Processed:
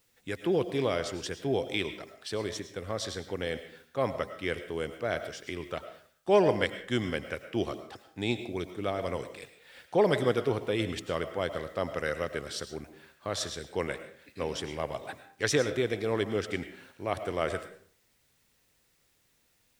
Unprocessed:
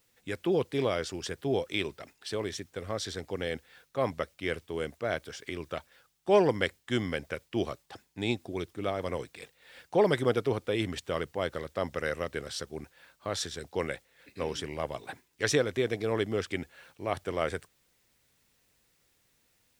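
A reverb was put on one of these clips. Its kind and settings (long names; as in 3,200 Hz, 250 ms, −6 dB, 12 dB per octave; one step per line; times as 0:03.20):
comb and all-pass reverb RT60 0.5 s, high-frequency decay 0.7×, pre-delay 65 ms, DRR 10 dB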